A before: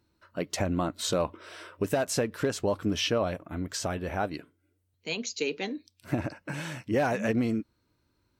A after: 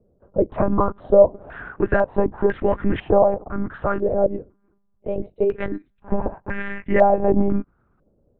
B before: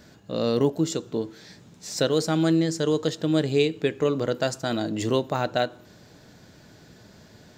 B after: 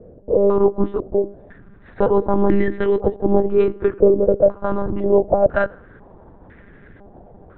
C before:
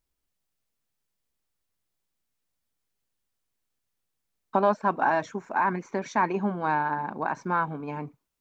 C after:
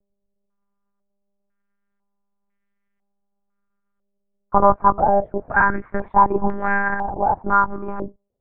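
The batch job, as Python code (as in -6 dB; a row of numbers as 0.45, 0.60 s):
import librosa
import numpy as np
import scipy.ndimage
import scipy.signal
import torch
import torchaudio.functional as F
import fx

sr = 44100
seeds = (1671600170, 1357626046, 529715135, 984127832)

y = fx.tilt_shelf(x, sr, db=4.0, hz=680.0)
y = fx.lpc_monotone(y, sr, seeds[0], pitch_hz=200.0, order=8)
y = fx.filter_held_lowpass(y, sr, hz=2.0, low_hz=540.0, high_hz=1900.0)
y = librosa.util.normalize(y) * 10.0 ** (-1.5 / 20.0)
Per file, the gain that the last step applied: +6.0, +3.5, +4.5 dB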